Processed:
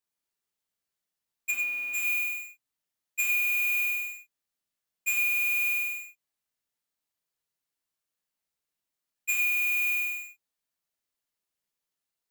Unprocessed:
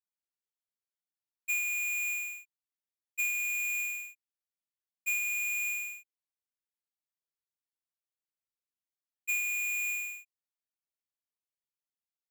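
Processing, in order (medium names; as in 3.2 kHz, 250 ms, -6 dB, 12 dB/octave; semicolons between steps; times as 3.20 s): 1.50–1.93 s: low-pass 2.2 kHz -> 1.1 kHz 6 dB/octave; gated-style reverb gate 140 ms flat, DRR 0 dB; trim +4.5 dB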